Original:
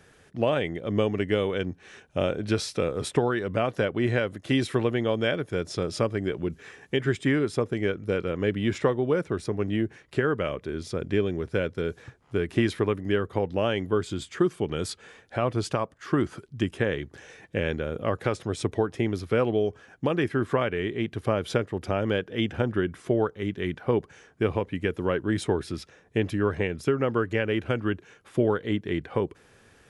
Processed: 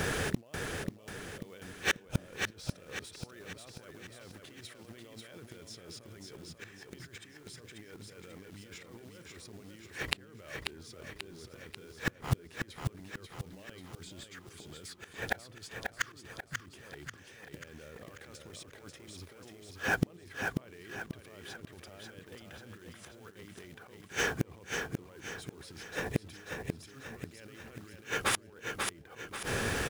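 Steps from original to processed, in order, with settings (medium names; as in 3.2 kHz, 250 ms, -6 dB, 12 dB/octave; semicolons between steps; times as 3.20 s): compressor with a negative ratio -34 dBFS, ratio -1; overload inside the chain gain 24.5 dB; inverted gate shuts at -32 dBFS, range -36 dB; short-mantissa float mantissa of 2-bit; on a send: feedback delay 539 ms, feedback 44%, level -5 dB; on the sum: tape noise reduction on one side only encoder only; trim +17 dB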